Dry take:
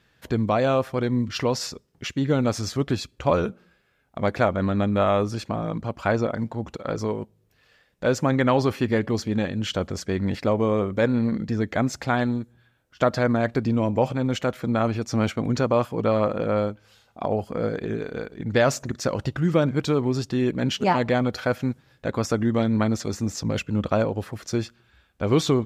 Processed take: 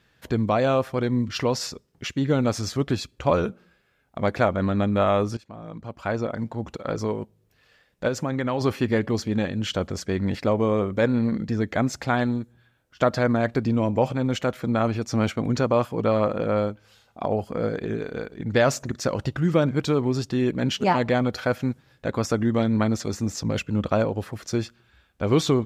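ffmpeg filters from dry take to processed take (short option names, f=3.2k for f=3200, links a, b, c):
-filter_complex "[0:a]asplit=3[a][b][c];[a]afade=t=out:st=8.07:d=0.02[d];[b]acompressor=threshold=-25dB:ratio=2:attack=3.2:release=140:knee=1:detection=peak,afade=t=in:st=8.07:d=0.02,afade=t=out:st=8.6:d=0.02[e];[c]afade=t=in:st=8.6:d=0.02[f];[d][e][f]amix=inputs=3:normalize=0,asplit=2[g][h];[g]atrim=end=5.37,asetpts=PTS-STARTPTS,afade=t=out:st=5.366:d=0.004:c=hsin:silence=0.1[i];[h]atrim=start=5.37,asetpts=PTS-STARTPTS,afade=t=in:d=1.3:silence=0.1[j];[i][j]concat=n=2:v=0:a=1"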